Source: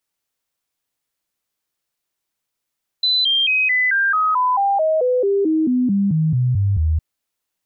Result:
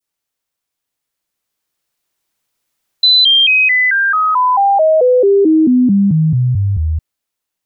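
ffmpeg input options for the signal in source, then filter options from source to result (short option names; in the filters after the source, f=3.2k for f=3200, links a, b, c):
-f lavfi -i "aevalsrc='0.2*clip(min(mod(t,0.22),0.22-mod(t,0.22))/0.005,0,1)*sin(2*PI*4010*pow(2,-floor(t/0.22)/3)*mod(t,0.22))':d=3.96:s=44100"
-af "adynamicequalizer=threshold=0.0316:dfrequency=1500:dqfactor=0.83:tfrequency=1500:tqfactor=0.83:attack=5:release=100:ratio=0.375:range=2.5:mode=cutabove:tftype=bell,dynaudnorm=f=280:g=13:m=9dB"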